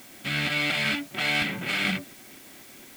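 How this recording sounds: tremolo saw up 4.2 Hz, depth 40%; a quantiser's noise floor 8-bit, dither triangular

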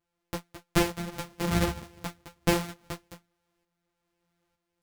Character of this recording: a buzz of ramps at a fixed pitch in blocks of 256 samples; tremolo saw up 1.1 Hz, depth 60%; a shimmering, thickened sound

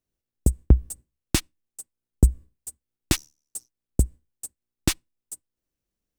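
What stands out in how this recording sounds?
noise floor -88 dBFS; spectral tilt -4.5 dB/oct

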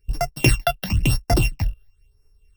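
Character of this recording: a buzz of ramps at a fixed pitch in blocks of 16 samples; phasing stages 8, 1 Hz, lowest notch 260–3300 Hz; noise-modulated level

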